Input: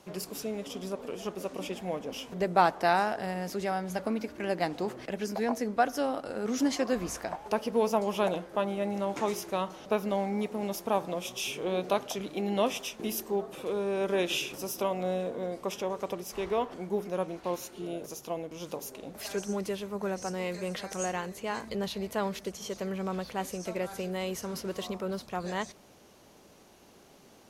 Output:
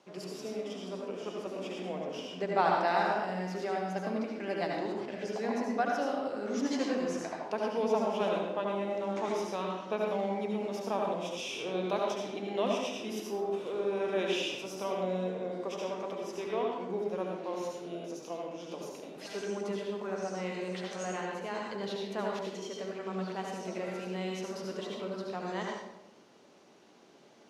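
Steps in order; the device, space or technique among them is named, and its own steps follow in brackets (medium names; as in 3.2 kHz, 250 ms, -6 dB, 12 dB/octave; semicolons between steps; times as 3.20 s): supermarket ceiling speaker (band-pass 210–5900 Hz; reverberation RT60 0.95 s, pre-delay 66 ms, DRR -1 dB); trim -5.5 dB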